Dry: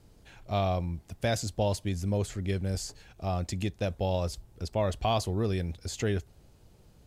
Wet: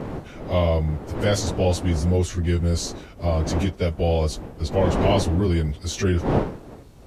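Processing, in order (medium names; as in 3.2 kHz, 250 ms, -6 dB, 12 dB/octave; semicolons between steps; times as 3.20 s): frequency-domain pitch shifter -2 st; wind noise 420 Hz -39 dBFS; in parallel at -2.5 dB: peak limiter -28 dBFS, peak gain reduction 11.5 dB; on the sum: trim +6.5 dB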